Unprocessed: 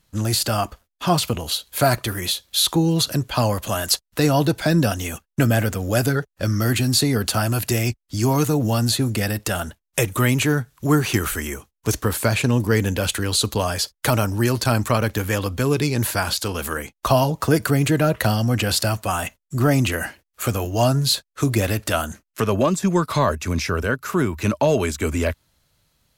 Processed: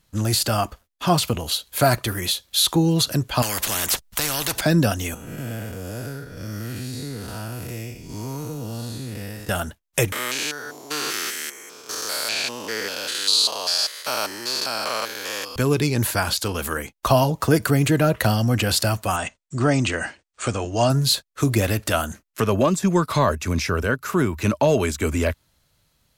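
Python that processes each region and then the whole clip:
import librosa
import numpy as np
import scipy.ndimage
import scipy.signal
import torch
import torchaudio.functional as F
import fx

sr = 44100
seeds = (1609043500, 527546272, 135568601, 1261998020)

y = fx.chain(x, sr, fx.low_shelf(hz=140.0, db=10.5),
    fx.spectral_comp(ratio=4.0), at=(3.42, 4.61))
y = fx.chain(y, sr, fx.spec_blur(span_ms=229.0),
    fx.comb_fb(f0_hz=480.0, decay_s=0.17, harmonics='all', damping=0.0, mix_pct=70),
    fx.band_squash(depth_pct=70), at=(5.14, 9.49))
y = fx.chain(y, sr, fx.spec_steps(hold_ms=200),
    fx.highpass(hz=590.0, slope=12),
    fx.peak_eq(hz=4600.0, db=12.5, octaves=0.98), at=(10.12, 15.56))
y = fx.chain(y, sr, fx.brickwall_lowpass(high_hz=9300.0),
    fx.low_shelf(hz=150.0, db=-6.0), at=(19.16, 20.9))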